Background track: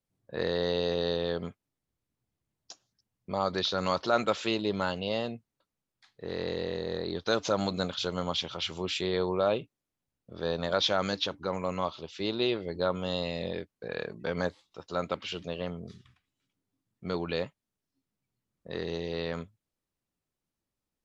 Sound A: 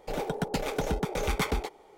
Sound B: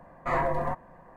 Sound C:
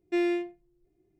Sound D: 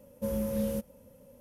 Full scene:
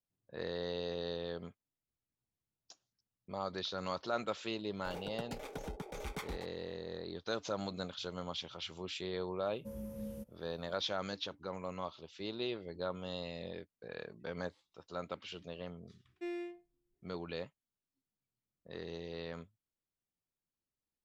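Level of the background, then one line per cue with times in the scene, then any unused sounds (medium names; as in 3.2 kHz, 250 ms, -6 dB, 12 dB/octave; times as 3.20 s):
background track -10 dB
4.77 s: add A -14 dB
9.43 s: add D -16.5 dB + bass shelf 340 Hz +6 dB
16.09 s: add C -14.5 dB
not used: B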